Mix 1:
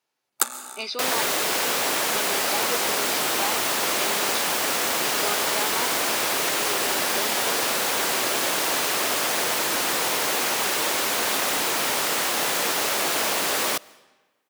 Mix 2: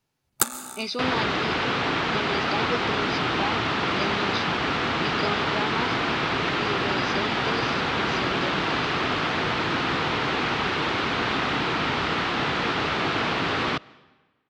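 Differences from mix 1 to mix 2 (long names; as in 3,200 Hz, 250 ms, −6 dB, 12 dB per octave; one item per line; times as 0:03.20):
second sound: add loudspeaker in its box 160–3,800 Hz, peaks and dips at 200 Hz −4 dB, 570 Hz −6 dB, 1,300 Hz +4 dB
master: remove high-pass filter 420 Hz 12 dB per octave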